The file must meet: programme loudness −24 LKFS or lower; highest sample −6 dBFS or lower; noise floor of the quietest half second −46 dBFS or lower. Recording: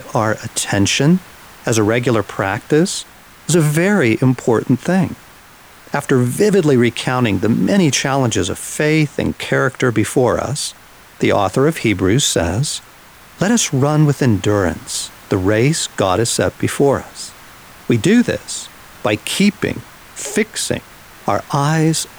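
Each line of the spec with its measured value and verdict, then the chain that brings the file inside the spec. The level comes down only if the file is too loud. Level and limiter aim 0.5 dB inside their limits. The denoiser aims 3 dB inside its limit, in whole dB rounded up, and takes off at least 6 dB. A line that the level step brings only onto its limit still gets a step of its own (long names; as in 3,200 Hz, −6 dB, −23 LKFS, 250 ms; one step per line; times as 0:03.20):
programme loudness −16.5 LKFS: out of spec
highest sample −3.5 dBFS: out of spec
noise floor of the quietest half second −42 dBFS: out of spec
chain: level −8 dB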